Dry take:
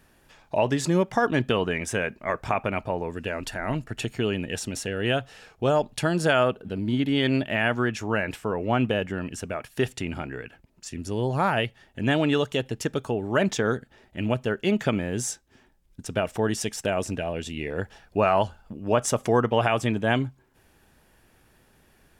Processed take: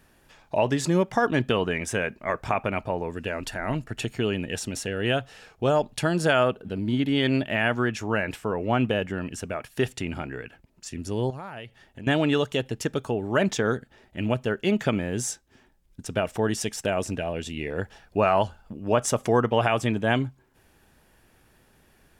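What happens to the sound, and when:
0:11.30–0:12.07: downward compressor 4 to 1, threshold −37 dBFS

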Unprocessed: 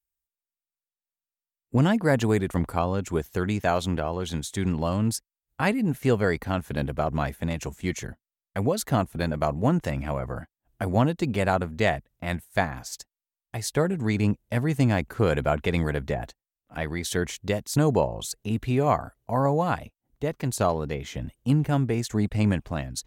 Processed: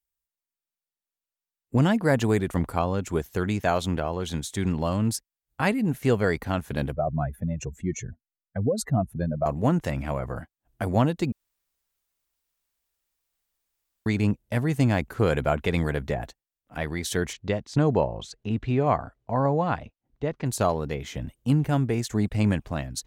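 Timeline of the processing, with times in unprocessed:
0:06.93–0:09.46: expanding power law on the bin magnitudes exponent 2.1
0:11.32–0:14.06: fill with room tone
0:17.33–0:20.46: high-frequency loss of the air 140 metres

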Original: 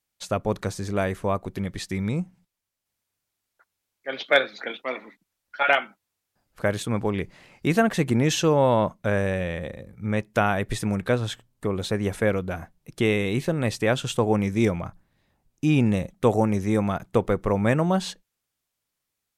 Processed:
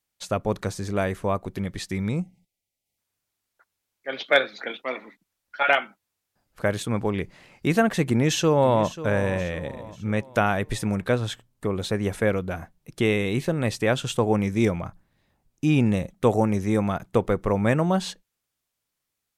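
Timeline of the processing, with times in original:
0:02.22–0:02.98: gain on a spectral selection 870–1,900 Hz −26 dB
0:08.03–0:08.92: delay throw 540 ms, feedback 45%, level −14.5 dB

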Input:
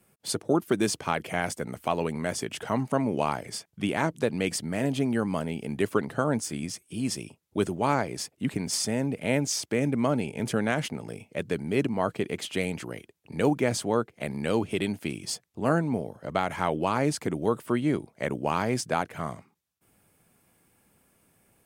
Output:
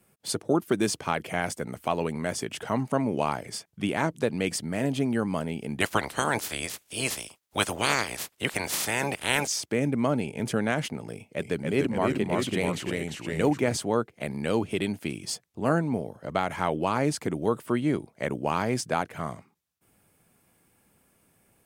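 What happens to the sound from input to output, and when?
0:05.80–0:09.46: ceiling on every frequency bin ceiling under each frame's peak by 27 dB
0:11.13–0:13.77: delay with pitch and tempo change per echo 268 ms, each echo −1 semitone, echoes 2

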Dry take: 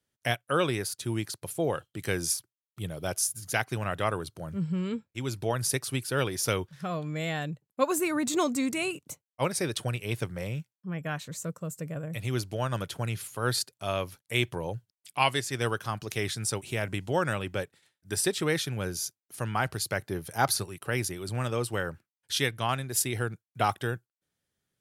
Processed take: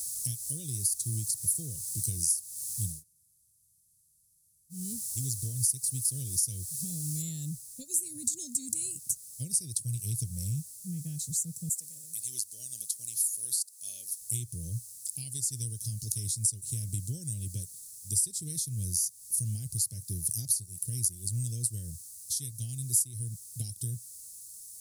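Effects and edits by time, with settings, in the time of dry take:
0:02.92–0:04.81: fill with room tone, crossfade 0.24 s
0:07.22: noise floor change −48 dB −59 dB
0:11.69–0:14.21: Bessel high-pass filter 820 Hz
whole clip: flat-topped bell 6,700 Hz +13.5 dB; downward compressor 6 to 1, threshold −29 dBFS; Chebyshev band-stop filter 110–9,400 Hz, order 2; level +6 dB

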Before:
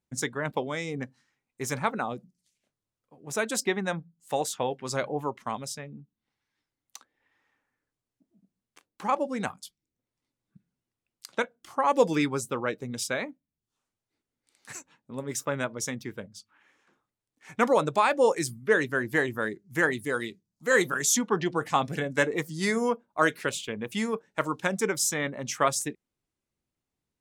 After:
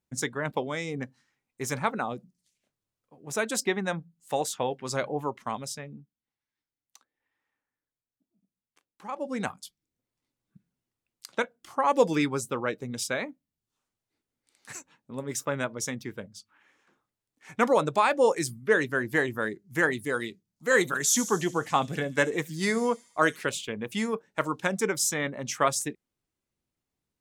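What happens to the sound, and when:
0:05.94–0:09.33: duck −10 dB, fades 0.18 s
0:20.80–0:23.43: delay with a high-pass on its return 72 ms, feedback 64%, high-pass 5,500 Hz, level −9.5 dB

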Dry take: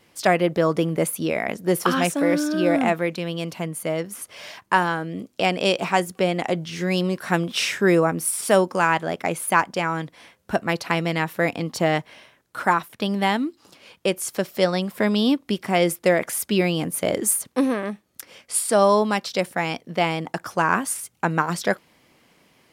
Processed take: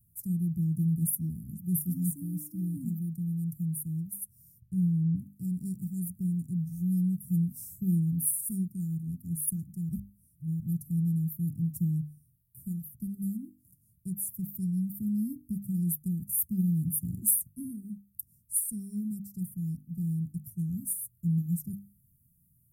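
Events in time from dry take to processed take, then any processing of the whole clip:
0:04.60–0:05.16: spectral tilt −2.5 dB per octave
0:09.89–0:10.60: reverse
whole clip: dynamic equaliser 200 Hz, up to +5 dB, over −35 dBFS, Q 0.93; inverse Chebyshev band-stop filter 540–3,700 Hz, stop band 70 dB; mains-hum notches 50/100/150/200/250/300 Hz; level +4 dB

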